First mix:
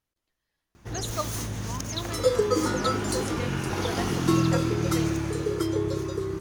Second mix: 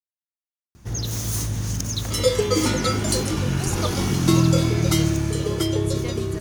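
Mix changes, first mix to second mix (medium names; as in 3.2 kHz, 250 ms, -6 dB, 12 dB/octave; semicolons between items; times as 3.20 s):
speech: entry +2.65 s; second sound: remove static phaser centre 690 Hz, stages 6; master: add tone controls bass +8 dB, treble +8 dB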